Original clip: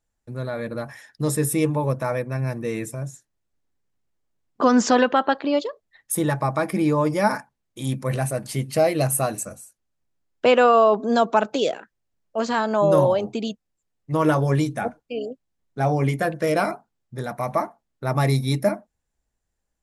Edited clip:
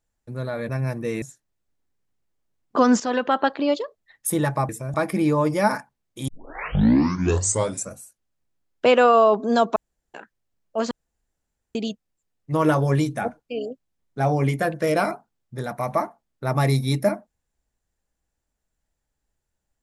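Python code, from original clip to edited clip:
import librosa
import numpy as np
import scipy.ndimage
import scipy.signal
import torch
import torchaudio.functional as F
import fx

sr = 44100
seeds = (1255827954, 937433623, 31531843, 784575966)

y = fx.edit(x, sr, fx.cut(start_s=0.69, length_s=1.6),
    fx.move(start_s=2.82, length_s=0.25, to_s=6.54),
    fx.fade_in_from(start_s=4.85, length_s=0.41, floor_db=-12.5),
    fx.tape_start(start_s=7.88, length_s=1.64),
    fx.room_tone_fill(start_s=11.36, length_s=0.38),
    fx.room_tone_fill(start_s=12.51, length_s=0.84), tone=tone)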